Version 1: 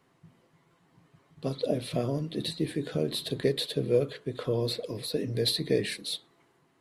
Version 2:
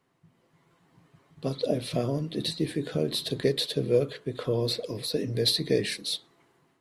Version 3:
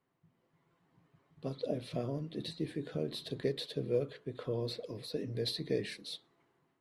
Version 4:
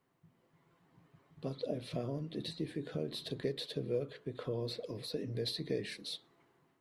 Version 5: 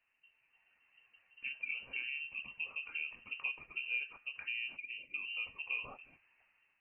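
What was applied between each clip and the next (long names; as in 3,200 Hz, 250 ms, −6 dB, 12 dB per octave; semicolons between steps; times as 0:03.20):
dynamic equaliser 5,600 Hz, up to +6 dB, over −52 dBFS, Q 2.1; automatic gain control gain up to 7 dB; level −5.5 dB
high-shelf EQ 4,700 Hz −9.5 dB; level −8.5 dB
downward compressor 1.5 to 1, threshold −46 dBFS, peak gain reduction 7.5 dB; level +3.5 dB
voice inversion scrambler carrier 2,900 Hz; gain on a spectral selection 0:04.77–0:05.15, 630–1,900 Hz −19 dB; level −3 dB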